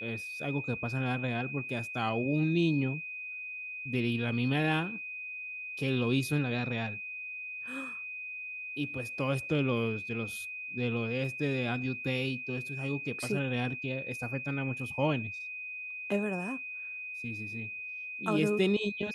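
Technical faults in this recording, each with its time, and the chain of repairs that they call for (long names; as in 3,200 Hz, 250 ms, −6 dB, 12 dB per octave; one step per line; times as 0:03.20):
whistle 2,500 Hz −38 dBFS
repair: notch filter 2,500 Hz, Q 30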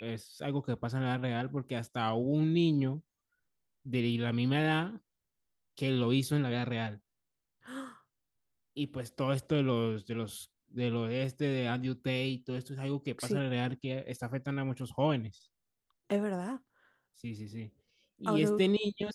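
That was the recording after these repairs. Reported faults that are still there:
none of them is left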